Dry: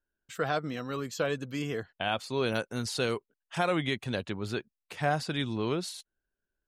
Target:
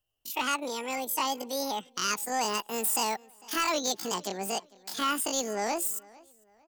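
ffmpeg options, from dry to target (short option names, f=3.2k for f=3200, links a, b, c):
-filter_complex "[0:a]acrossover=split=160|3000[a][b][c];[a]acompressor=threshold=-42dB:ratio=10[d];[d][b][c]amix=inputs=3:normalize=0,crystalizer=i=3:c=0,asetrate=83250,aresample=44100,atempo=0.529732,asoftclip=type=tanh:threshold=-21dB,asplit=2[e][f];[f]adelay=451,lowpass=f=4.7k:p=1,volume=-23dB,asplit=2[g][h];[h]adelay=451,lowpass=f=4.7k:p=1,volume=0.35[i];[g][i]amix=inputs=2:normalize=0[j];[e][j]amix=inputs=2:normalize=0,volume=1.5dB"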